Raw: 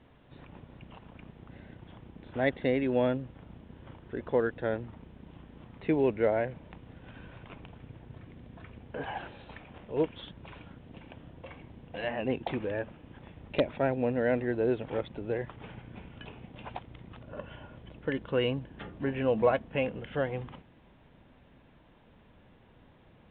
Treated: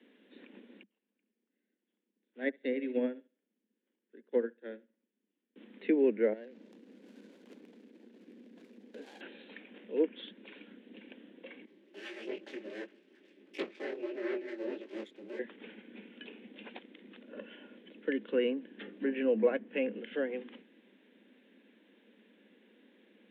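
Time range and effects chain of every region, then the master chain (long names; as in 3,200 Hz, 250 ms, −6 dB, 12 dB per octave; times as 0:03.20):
0:00.83–0:05.56: repeating echo 69 ms, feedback 50%, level −12 dB + expander for the loud parts 2.5 to 1, over −43 dBFS
0:06.33–0:09.21: running median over 25 samples + downward compressor 2.5 to 1, threshold −44 dBFS
0:11.65–0:15.39: lower of the sound and its delayed copy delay 4.2 ms + ring modulation 110 Hz + micro pitch shift up and down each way 54 cents
whole clip: treble cut that deepens with the level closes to 2,000 Hz, closed at −26 dBFS; Butterworth high-pass 200 Hz 96 dB per octave; flat-topped bell 910 Hz −13 dB 1.3 octaves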